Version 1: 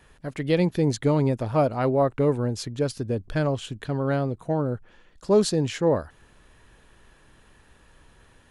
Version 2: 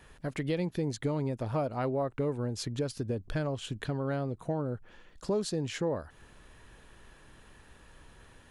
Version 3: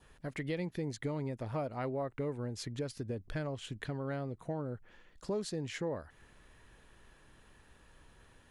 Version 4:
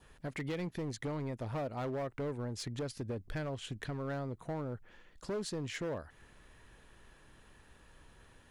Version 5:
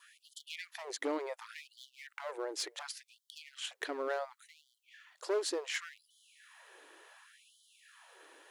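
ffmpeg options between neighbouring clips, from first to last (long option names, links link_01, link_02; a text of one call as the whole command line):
ffmpeg -i in.wav -af "acompressor=threshold=-31dB:ratio=3" out.wav
ffmpeg -i in.wav -af "adynamicequalizer=threshold=0.001:dfrequency=2000:dqfactor=3.5:tfrequency=2000:tqfactor=3.5:attack=5:release=100:ratio=0.375:range=3:mode=boostabove:tftype=bell,volume=-5.5dB" out.wav
ffmpeg -i in.wav -af "volume=34dB,asoftclip=hard,volume=-34dB,volume=1dB" out.wav
ffmpeg -i in.wav -af "afftfilt=real='re*gte(b*sr/1024,270*pow(3000/270,0.5+0.5*sin(2*PI*0.69*pts/sr)))':imag='im*gte(b*sr/1024,270*pow(3000/270,0.5+0.5*sin(2*PI*0.69*pts/sr)))':win_size=1024:overlap=0.75,volume=5.5dB" out.wav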